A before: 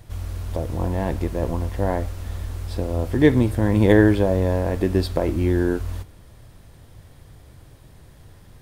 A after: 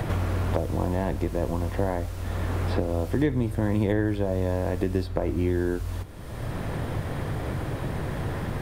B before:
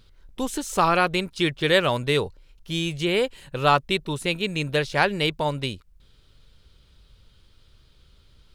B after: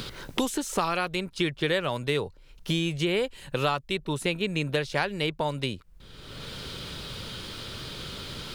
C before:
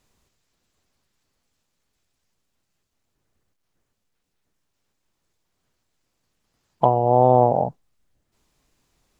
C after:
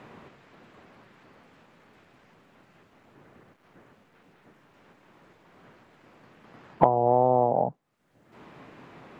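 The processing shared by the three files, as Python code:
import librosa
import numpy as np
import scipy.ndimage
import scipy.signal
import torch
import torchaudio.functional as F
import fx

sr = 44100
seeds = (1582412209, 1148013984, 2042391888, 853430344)

y = fx.band_squash(x, sr, depth_pct=100)
y = F.gain(torch.from_numpy(y), -5.0).numpy()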